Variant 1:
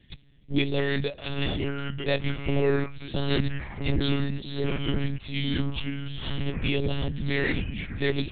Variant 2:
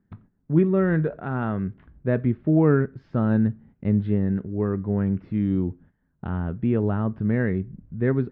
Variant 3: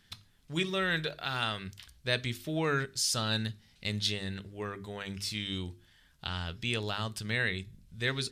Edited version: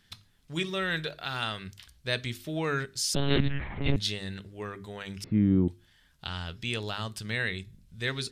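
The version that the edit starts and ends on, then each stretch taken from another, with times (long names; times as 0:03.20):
3
0:03.15–0:03.96: punch in from 1
0:05.24–0:05.68: punch in from 2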